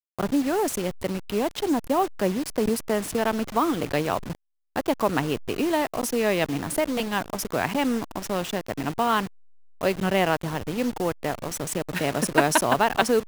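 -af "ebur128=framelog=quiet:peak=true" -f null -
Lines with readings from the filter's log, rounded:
Integrated loudness:
  I:         -25.5 LUFS
  Threshold: -35.6 LUFS
Loudness range:
  LRA:         1.8 LU
  Threshold: -46.1 LUFS
  LRA low:   -26.8 LUFS
  LRA high:  -25.0 LUFS
True peak:
  Peak:       -2.9 dBFS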